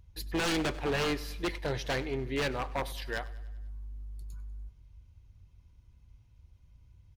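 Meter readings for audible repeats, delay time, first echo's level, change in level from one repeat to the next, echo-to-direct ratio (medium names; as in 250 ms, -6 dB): 4, 98 ms, -19.0 dB, -5.0 dB, -17.5 dB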